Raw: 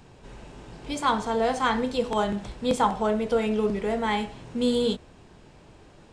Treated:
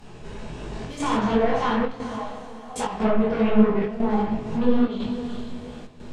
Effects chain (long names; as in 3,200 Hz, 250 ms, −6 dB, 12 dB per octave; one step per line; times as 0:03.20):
brickwall limiter −18.5 dBFS, peak gain reduction 10 dB
gain into a clipping stage and back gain 28.5 dB
0:01.92–0:02.76: formant resonators in series a
0:03.84–0:04.47: parametric band 2,700 Hz −14.5 dB 1.9 octaves
feedback delay with all-pass diffusion 457 ms, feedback 43%, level −13.5 dB
rectangular room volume 260 cubic metres, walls mixed, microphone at 1.4 metres
square-wave tremolo 1 Hz, depth 65%, duty 85%
treble cut that deepens with the level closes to 2,200 Hz, closed at −20 dBFS
0:00.67–0:01.17: flutter between parallel walls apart 10.1 metres, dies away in 0.76 s
micro pitch shift up and down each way 48 cents
level +7 dB